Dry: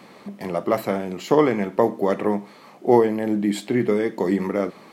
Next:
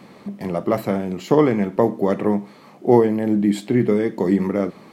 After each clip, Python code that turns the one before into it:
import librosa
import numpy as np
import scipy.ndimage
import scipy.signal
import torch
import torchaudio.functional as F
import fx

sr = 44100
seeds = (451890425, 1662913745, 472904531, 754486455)

y = fx.low_shelf(x, sr, hz=270.0, db=10.0)
y = y * 10.0 ** (-1.5 / 20.0)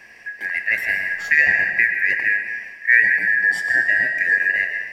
y = fx.band_shuffle(x, sr, order='2143')
y = fx.rev_freeverb(y, sr, rt60_s=1.3, hf_ratio=0.9, predelay_ms=75, drr_db=5.0)
y = fx.dmg_crackle(y, sr, seeds[0], per_s=12.0, level_db=-46.0)
y = y * 10.0 ** (-1.0 / 20.0)